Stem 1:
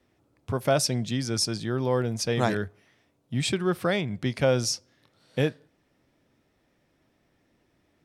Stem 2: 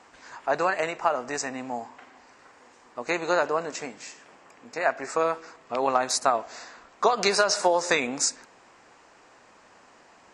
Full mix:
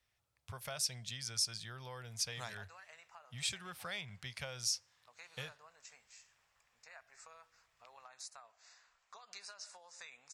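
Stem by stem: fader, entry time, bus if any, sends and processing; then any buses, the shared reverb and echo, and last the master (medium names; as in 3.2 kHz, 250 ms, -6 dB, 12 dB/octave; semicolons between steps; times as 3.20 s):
-3.5 dB, 0.00 s, no send, compression 4:1, threshold -25 dBFS, peak gain reduction 7 dB
-15.5 dB, 2.10 s, no send, compression 2:1, threshold -33 dBFS, peak gain reduction 10 dB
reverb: none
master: amplifier tone stack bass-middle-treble 10-0-10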